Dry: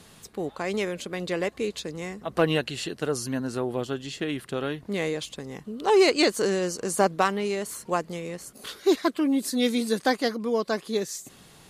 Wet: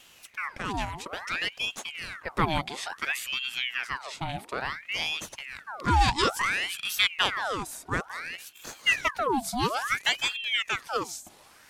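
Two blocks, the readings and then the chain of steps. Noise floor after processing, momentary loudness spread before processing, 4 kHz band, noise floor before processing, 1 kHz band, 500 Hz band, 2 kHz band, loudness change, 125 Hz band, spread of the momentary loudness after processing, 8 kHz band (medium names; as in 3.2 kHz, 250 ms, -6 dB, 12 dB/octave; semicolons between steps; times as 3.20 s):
-55 dBFS, 12 LU, +4.0 dB, -52 dBFS, +1.5 dB, -12.0 dB, +4.5 dB, -2.0 dB, 0.0 dB, 12 LU, -2.5 dB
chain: hum notches 60/120/180/240/300/360 Hz; ring modulator with a swept carrier 1.7 kHz, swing 75%, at 0.58 Hz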